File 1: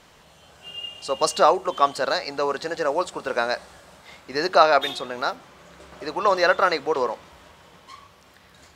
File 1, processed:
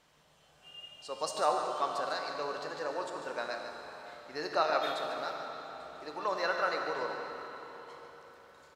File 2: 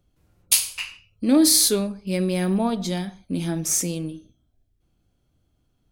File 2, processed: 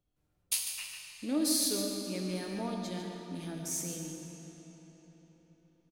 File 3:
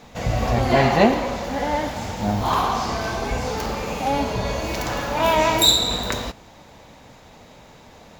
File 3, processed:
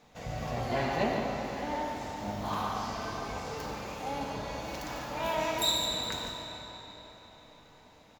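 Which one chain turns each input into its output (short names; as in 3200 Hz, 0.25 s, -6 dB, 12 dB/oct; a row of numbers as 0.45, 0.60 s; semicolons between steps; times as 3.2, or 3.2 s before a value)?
low shelf 220 Hz -3.5 dB; resonator 150 Hz, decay 0.79 s, harmonics all, mix 70%; echo 0.146 s -9.5 dB; digital reverb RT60 4.4 s, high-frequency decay 0.8×, pre-delay 30 ms, DRR 3.5 dB; gain -4.5 dB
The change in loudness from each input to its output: -12.5, -13.0, -12.5 LU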